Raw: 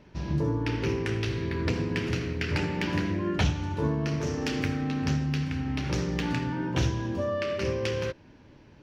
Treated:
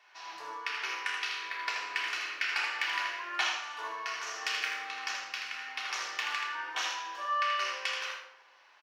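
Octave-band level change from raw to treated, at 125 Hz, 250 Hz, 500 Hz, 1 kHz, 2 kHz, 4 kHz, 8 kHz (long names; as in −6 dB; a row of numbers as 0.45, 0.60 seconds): below −40 dB, −32.5 dB, −18.0 dB, +3.5 dB, +3.5 dB, +3.5 dB, can't be measured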